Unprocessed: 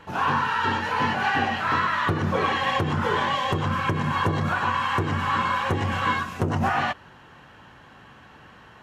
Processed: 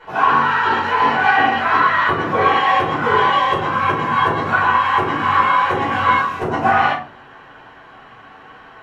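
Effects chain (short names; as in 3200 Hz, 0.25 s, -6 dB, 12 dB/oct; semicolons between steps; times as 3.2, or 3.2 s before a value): tone controls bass -11 dB, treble -9 dB; reverb RT60 0.40 s, pre-delay 5 ms, DRR -7 dB; gain -1 dB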